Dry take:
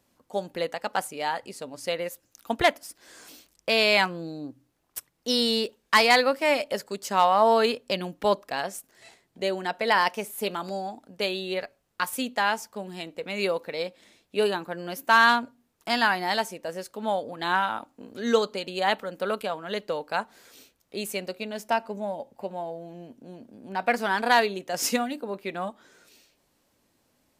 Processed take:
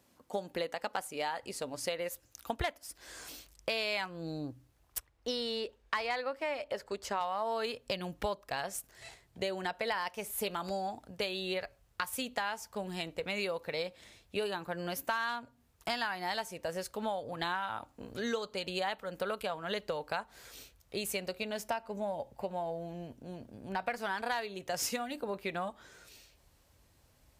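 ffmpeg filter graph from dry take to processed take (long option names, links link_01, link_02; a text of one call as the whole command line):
ffmpeg -i in.wav -filter_complex "[0:a]asettb=1/sr,asplit=3[link_01][link_02][link_03];[link_01]atrim=end=4.984[link_04];[link_02]atrim=start=4.98:end=7.21,asetpts=PTS-STARTPTS,afade=type=in:duration=0.004:curve=qsin,afade=type=out:start_time=2.226:duration=0.004:curve=qsin,lowpass=frequency=2300:poles=1,equalizer=frequency=160:width=2.5:gain=-12.5[link_05];[link_03]atrim=start=7.206[link_06];[link_04][link_05]acrossfade=duration=0.004:curve1=hsin:curve2=qsin[link_07];[link_07][link_06]acrossfade=duration=0.004:curve1=qsin:curve2=hsin,highpass=44,asubboost=boost=11:cutoff=71,acompressor=threshold=-33dB:ratio=6,volume=1dB" out.wav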